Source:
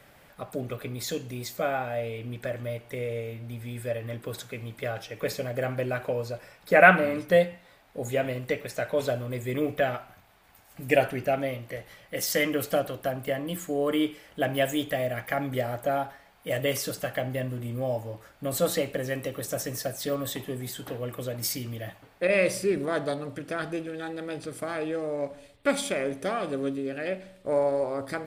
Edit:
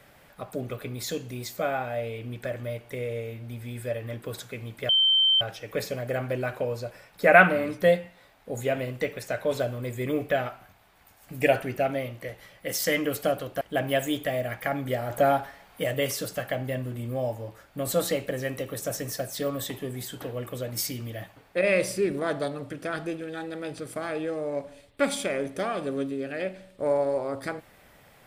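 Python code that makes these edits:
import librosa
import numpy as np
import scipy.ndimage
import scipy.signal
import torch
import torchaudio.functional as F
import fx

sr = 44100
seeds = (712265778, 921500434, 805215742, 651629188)

y = fx.edit(x, sr, fx.insert_tone(at_s=4.89, length_s=0.52, hz=3110.0, db=-17.5),
    fx.cut(start_s=13.09, length_s=1.18),
    fx.clip_gain(start_s=15.76, length_s=0.74, db=5.5), tone=tone)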